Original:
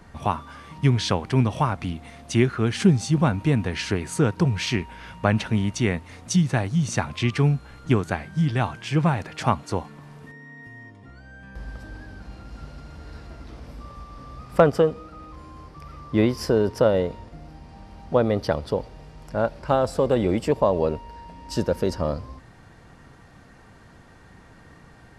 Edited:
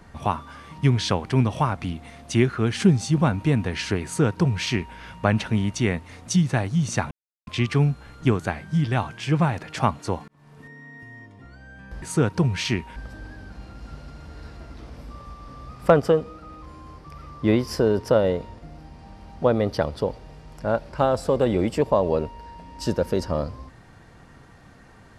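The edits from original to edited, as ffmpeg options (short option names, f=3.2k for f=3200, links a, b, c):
-filter_complex "[0:a]asplit=5[a][b][c][d][e];[a]atrim=end=7.11,asetpts=PTS-STARTPTS,afade=t=out:st=7.106:d=0.004:c=hsin,apad=pad_dur=0.36[f];[b]atrim=start=7.11:end=9.92,asetpts=PTS-STARTPTS,afade=t=in:d=0.004:c=hsin,afade=t=out:st=2.806:d=0.004:c=hsin[g];[c]atrim=start=9.92:end=11.662,asetpts=PTS-STARTPTS,afade=t=in:d=0.43[h];[d]atrim=start=4.038:end=4.982[i];[e]atrim=start=11.658[j];[f][g][h]concat=n=3:v=0:a=1[k];[k][i]acrossfade=d=0.004:c1=hsin:c2=hsin[l];[l][j]acrossfade=d=0.004:c1=hsin:c2=hsin"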